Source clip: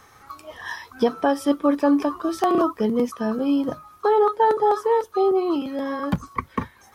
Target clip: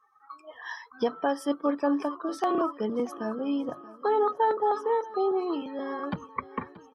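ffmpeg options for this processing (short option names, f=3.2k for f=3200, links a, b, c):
-filter_complex "[0:a]highpass=f=260:p=1,afftdn=nr=27:nf=-44,asplit=2[a][b];[b]aecho=0:1:630|1260|1890|2520:0.112|0.0572|0.0292|0.0149[c];[a][c]amix=inputs=2:normalize=0,volume=-5.5dB"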